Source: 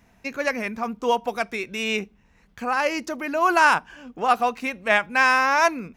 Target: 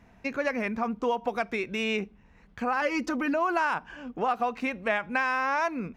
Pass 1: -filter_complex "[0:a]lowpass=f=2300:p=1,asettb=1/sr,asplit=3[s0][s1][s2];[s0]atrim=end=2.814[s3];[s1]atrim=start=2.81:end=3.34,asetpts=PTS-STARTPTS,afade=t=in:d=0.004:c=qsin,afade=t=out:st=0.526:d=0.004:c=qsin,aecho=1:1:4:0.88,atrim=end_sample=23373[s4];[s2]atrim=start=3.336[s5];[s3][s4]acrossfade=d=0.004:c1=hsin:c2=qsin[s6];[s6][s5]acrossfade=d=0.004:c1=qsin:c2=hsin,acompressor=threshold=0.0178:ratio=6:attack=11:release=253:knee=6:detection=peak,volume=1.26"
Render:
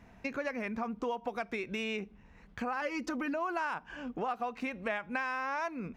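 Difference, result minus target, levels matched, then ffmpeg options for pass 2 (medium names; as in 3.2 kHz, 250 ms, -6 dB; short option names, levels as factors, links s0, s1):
compression: peak gain reduction +8 dB
-filter_complex "[0:a]lowpass=f=2300:p=1,asettb=1/sr,asplit=3[s0][s1][s2];[s0]atrim=end=2.814[s3];[s1]atrim=start=2.81:end=3.34,asetpts=PTS-STARTPTS,afade=t=in:d=0.004:c=qsin,afade=t=out:st=0.526:d=0.004:c=qsin,aecho=1:1:4:0.88,atrim=end_sample=23373[s4];[s2]atrim=start=3.336[s5];[s3][s4]acrossfade=d=0.004:c1=hsin:c2=qsin[s6];[s6][s5]acrossfade=d=0.004:c1=qsin:c2=hsin,acompressor=threshold=0.0531:ratio=6:attack=11:release=253:knee=6:detection=peak,volume=1.26"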